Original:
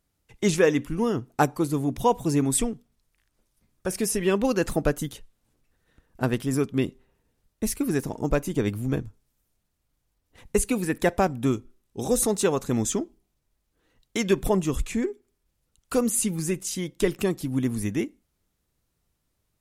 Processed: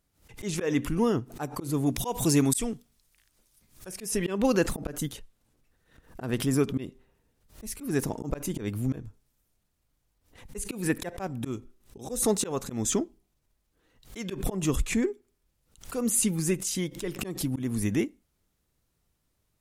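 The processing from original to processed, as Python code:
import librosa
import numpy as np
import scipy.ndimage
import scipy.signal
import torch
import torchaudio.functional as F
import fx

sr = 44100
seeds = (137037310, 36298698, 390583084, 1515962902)

y = fx.high_shelf(x, sr, hz=2400.0, db=9.5, at=(1.86, 3.89))
y = fx.auto_swell(y, sr, attack_ms=194.0)
y = fx.pre_swell(y, sr, db_per_s=140.0)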